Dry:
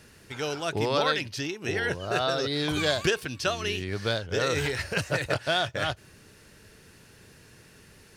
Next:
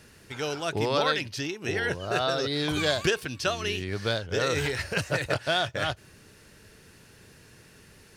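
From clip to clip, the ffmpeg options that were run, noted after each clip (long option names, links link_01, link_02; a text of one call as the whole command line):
ffmpeg -i in.wav -af anull out.wav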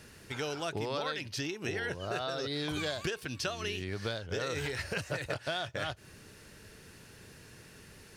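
ffmpeg -i in.wav -af "acompressor=threshold=-33dB:ratio=4" out.wav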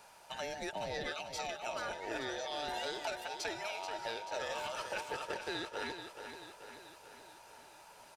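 ffmpeg -i in.wav -af "afftfilt=real='real(if(between(b,1,1008),(2*floor((b-1)/48)+1)*48-b,b),0)':imag='imag(if(between(b,1,1008),(2*floor((b-1)/48)+1)*48-b,b),0)*if(between(b,1,1008),-1,1)':win_size=2048:overlap=0.75,aecho=1:1:434|868|1302|1736|2170|2604|3038:0.376|0.214|0.122|0.0696|0.0397|0.0226|0.0129,volume=-5dB" out.wav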